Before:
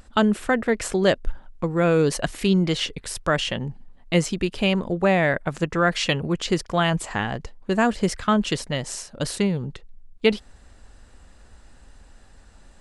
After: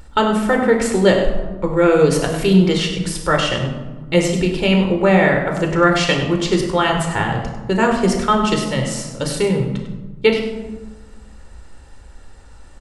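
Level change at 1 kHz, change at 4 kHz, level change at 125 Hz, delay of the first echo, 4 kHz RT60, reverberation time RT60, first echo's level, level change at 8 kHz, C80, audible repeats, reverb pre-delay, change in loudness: +6.5 dB, +4.5 dB, +6.0 dB, 99 ms, 0.65 s, 1.3 s, -10.5 dB, +4.5 dB, 6.5 dB, 1, 17 ms, +6.0 dB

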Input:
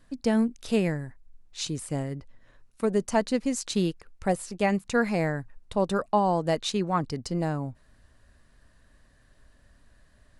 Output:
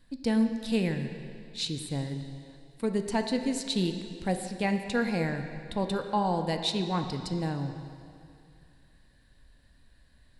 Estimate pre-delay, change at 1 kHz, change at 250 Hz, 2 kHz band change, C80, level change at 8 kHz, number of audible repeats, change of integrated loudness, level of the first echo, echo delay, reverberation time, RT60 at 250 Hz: 7 ms, -4.0 dB, -1.5 dB, -2.5 dB, 8.0 dB, -4.5 dB, no echo, -2.5 dB, no echo, no echo, 2.4 s, 2.5 s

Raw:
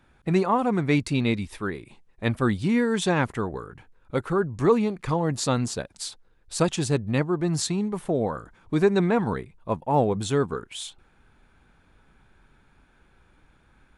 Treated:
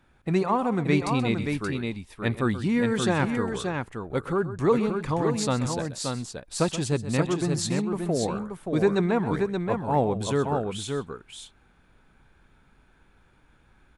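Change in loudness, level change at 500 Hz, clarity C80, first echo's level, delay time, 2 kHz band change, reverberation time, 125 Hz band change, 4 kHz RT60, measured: -1.0 dB, -1.0 dB, no reverb, -13.5 dB, 129 ms, -0.5 dB, no reverb, -0.5 dB, no reverb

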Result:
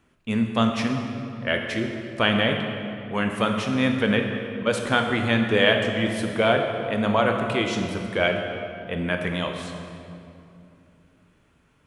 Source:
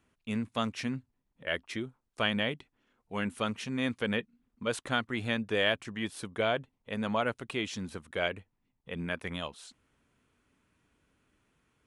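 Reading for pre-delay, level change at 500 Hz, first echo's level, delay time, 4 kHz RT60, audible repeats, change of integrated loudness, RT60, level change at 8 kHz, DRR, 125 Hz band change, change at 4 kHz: 16 ms, +10.5 dB, no echo, no echo, 1.8 s, no echo, +9.5 dB, 2.7 s, +6.0 dB, 3.0 dB, +11.5 dB, +8.5 dB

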